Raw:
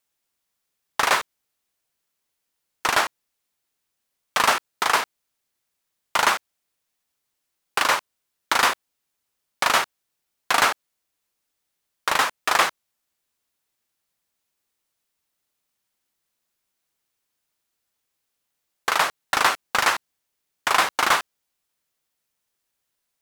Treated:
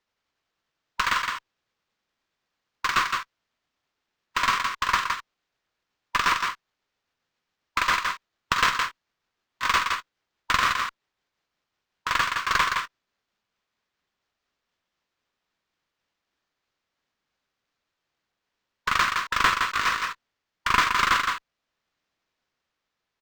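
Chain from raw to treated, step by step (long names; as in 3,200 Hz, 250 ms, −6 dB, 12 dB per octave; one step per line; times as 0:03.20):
pitch glide at a constant tempo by −4 semitones ending unshifted
linear-phase brick-wall band-pass 950–13,000 Hz
on a send: single-tap delay 165 ms −4.5 dB
on the sum: harmonic generator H 2 −9 dB, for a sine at −5 dBFS
linearly interpolated sample-rate reduction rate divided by 4×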